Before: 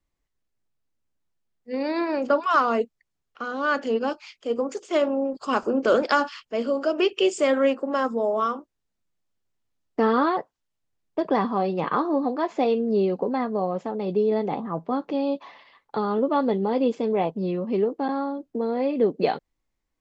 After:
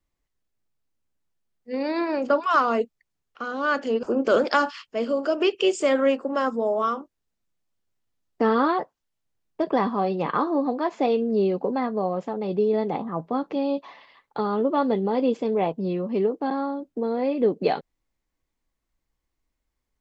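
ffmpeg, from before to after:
ffmpeg -i in.wav -filter_complex "[0:a]asplit=2[link_01][link_02];[link_01]atrim=end=4.032[link_03];[link_02]atrim=start=5.608[link_04];[link_03][link_04]acrossfade=duration=0.004:curve1=hsin:curve2=hsin" out.wav

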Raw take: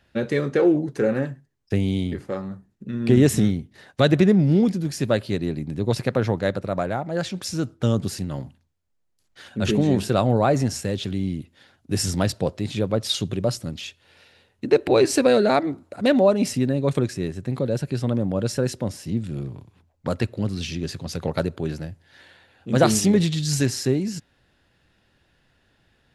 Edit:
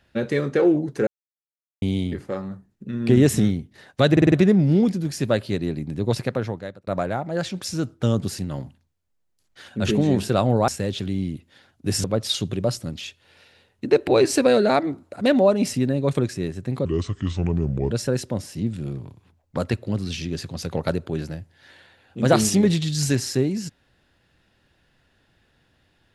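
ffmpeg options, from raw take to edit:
ffmpeg -i in.wav -filter_complex "[0:a]asplit=12[link_01][link_02][link_03][link_04][link_05][link_06][link_07][link_08][link_09][link_10][link_11][link_12];[link_01]atrim=end=1.07,asetpts=PTS-STARTPTS,afade=type=out:start_time=1.066:duration=0.004:curve=hsin[link_13];[link_02]atrim=start=1.07:end=1.82,asetpts=PTS-STARTPTS,volume=0[link_14];[link_03]atrim=start=1.82:end=4.172,asetpts=PTS-STARTPTS,afade=type=in:duration=0.004:curve=hsin[link_15];[link_04]atrim=start=4.118:end=4.172[link_16];[link_05]atrim=start=4.118:end=4.172[link_17];[link_06]atrim=start=4.118:end=4.172[link_18];[link_07]atrim=start=4.118:end=6.67,asetpts=PTS-STARTPTS,afade=type=out:start_time=1.822:duration=0.73[link_19];[link_08]atrim=start=6.67:end=10.482,asetpts=PTS-STARTPTS,afade=type=in:duration=0.004:curve=hsin[link_20];[link_09]atrim=start=10.728:end=12.092[link_21];[link_10]atrim=start=12.838:end=17.654[link_22];[link_11]atrim=start=17.65:end=18.41,asetpts=PTS-STARTPTS,asetrate=31752,aresample=44100[link_23];[link_12]atrim=start=18.406[link_24];[link_13][link_14][link_15]concat=n=3:v=0:a=1[link_25];[link_25][link_16]acrossfade=duration=0.004:curve1=hsin:curve2=hsin[link_26];[link_26][link_17]acrossfade=duration=0.004:curve1=hsin:curve2=hsin[link_27];[link_27][link_18]acrossfade=duration=0.004:curve1=hsin:curve2=hsin[link_28];[link_19][link_20]concat=n=2:v=0:a=1[link_29];[link_28][link_29]acrossfade=duration=0.004:curve1=hsin:curve2=hsin[link_30];[link_30][link_21]acrossfade=duration=0.004:curve1=hsin:curve2=hsin[link_31];[link_31][link_22]acrossfade=duration=0.004:curve1=hsin:curve2=hsin[link_32];[link_32][link_23]acrossfade=duration=0.004:curve1=hsin:curve2=hsin[link_33];[link_33][link_24]acrossfade=duration=0.004:curve1=hsin:curve2=hsin" out.wav

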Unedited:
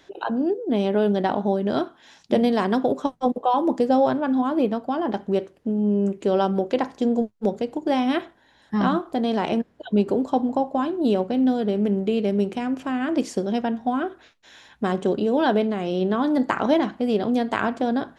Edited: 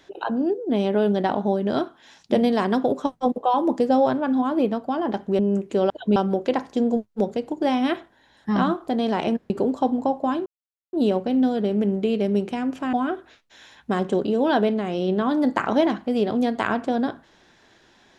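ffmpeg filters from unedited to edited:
ffmpeg -i in.wav -filter_complex "[0:a]asplit=7[link_01][link_02][link_03][link_04][link_05][link_06][link_07];[link_01]atrim=end=5.392[link_08];[link_02]atrim=start=5.898:end=6.412[link_09];[link_03]atrim=start=9.748:end=10.012[link_10];[link_04]atrim=start=6.408:end=9.752[link_11];[link_05]atrim=start=10.008:end=10.97,asetpts=PTS-STARTPTS,afade=type=out:start_time=0.958:duration=0.004:curve=hsin,apad=pad_dur=0.47[link_12];[link_06]atrim=start=10.97:end=12.972,asetpts=PTS-STARTPTS,afade=type=in:duration=0.004:curve=hsin[link_13];[link_07]atrim=start=13.858[link_14];[link_08][link_09]acrossfade=duration=0.004:curve1=hsin:curve2=hsin[link_15];[link_15][link_10]acrossfade=duration=0.004:curve1=hsin:curve2=hsin[link_16];[link_16][link_11]acrossfade=duration=0.004:curve1=hsin:curve2=hsin[link_17];[link_12][link_13]concat=n=2:v=0:a=1[link_18];[link_17][link_18]acrossfade=duration=0.004:curve1=hsin:curve2=hsin[link_19];[link_19][link_14]acrossfade=duration=0.004:curve1=hsin:curve2=hsin" out.wav

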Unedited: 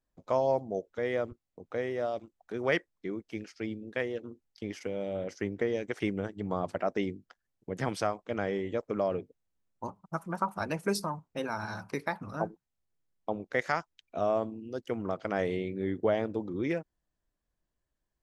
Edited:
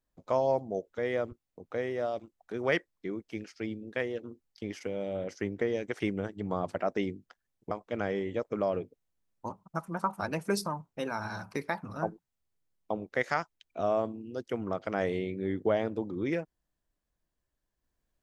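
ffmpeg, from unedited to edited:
ffmpeg -i in.wav -filter_complex "[0:a]asplit=2[link_01][link_02];[link_01]atrim=end=7.712[link_03];[link_02]atrim=start=8.088[link_04];[link_03][link_04]acrossfade=duration=0.004:curve1=hsin:curve2=hsin" out.wav

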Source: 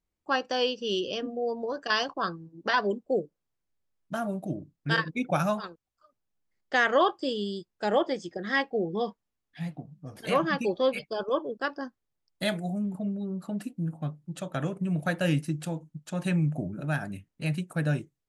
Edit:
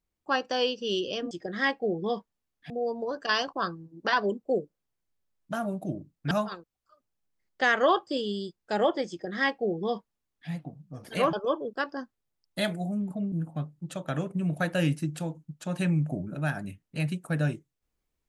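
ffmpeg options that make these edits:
ffmpeg -i in.wav -filter_complex "[0:a]asplit=6[link_01][link_02][link_03][link_04][link_05][link_06];[link_01]atrim=end=1.312[link_07];[link_02]atrim=start=8.218:end=9.612[link_08];[link_03]atrim=start=1.308:end=4.922[link_09];[link_04]atrim=start=5.428:end=10.452[link_10];[link_05]atrim=start=11.168:end=13.162[link_11];[link_06]atrim=start=13.778[link_12];[link_07][link_08]acrossfade=duration=0.004:curve1=hsin:curve2=hsin[link_13];[link_13][link_09]acrossfade=duration=0.004:curve1=hsin:curve2=hsin[link_14];[link_14][link_10]acrossfade=duration=0.004:curve1=hsin:curve2=hsin[link_15];[link_15][link_11]acrossfade=duration=0.004:curve1=hsin:curve2=hsin[link_16];[link_16][link_12]acrossfade=duration=0.004:curve1=hsin:curve2=hsin" out.wav

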